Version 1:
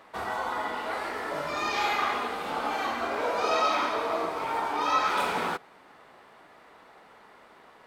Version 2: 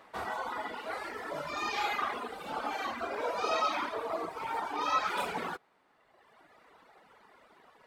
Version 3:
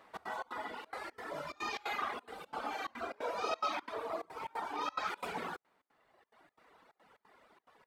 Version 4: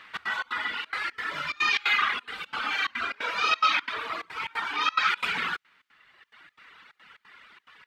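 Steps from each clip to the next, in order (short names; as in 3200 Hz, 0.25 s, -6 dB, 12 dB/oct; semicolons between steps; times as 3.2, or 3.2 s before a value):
reverb removal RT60 1.5 s; gain -3 dB
step gate "xx.xx.xx" 178 bpm -24 dB; gain -4 dB
EQ curve 150 Hz 0 dB, 700 Hz -11 dB, 1400 Hz +9 dB, 2900 Hz +14 dB, 10000 Hz -3 dB; gain +6 dB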